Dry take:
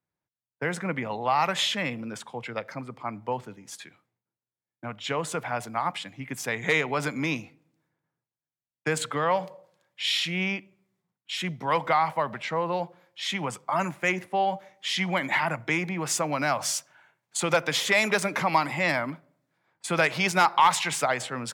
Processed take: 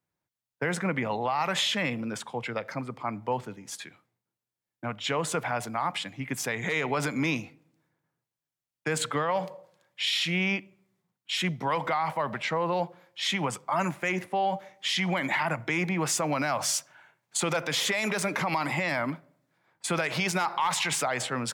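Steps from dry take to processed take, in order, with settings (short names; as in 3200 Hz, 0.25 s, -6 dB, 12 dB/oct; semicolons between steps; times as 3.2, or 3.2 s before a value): limiter -20.5 dBFS, peak gain reduction 11 dB; gain +2.5 dB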